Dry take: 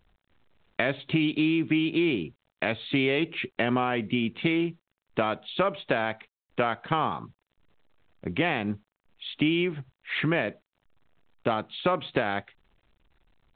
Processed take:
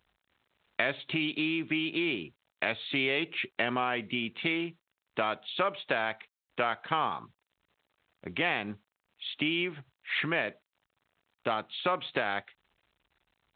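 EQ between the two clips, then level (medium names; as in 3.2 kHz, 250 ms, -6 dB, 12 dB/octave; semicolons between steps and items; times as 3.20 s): high-pass 47 Hz; bass shelf 500 Hz -11 dB; 0.0 dB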